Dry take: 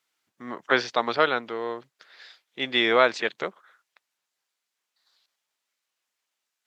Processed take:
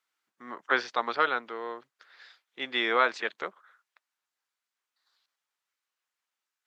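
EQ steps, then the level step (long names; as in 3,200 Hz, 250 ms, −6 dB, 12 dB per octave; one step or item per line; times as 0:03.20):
high-pass filter 200 Hz 12 dB per octave
parametric band 1,300 Hz +6 dB 1.3 octaves
notch filter 630 Hz, Q 19
−7.5 dB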